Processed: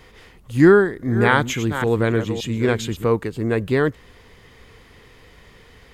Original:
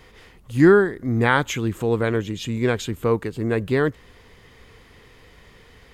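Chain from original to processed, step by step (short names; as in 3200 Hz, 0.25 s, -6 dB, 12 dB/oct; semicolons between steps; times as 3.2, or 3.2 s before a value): 0.72–3.05 reverse delay 0.281 s, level -9 dB; gain +1.5 dB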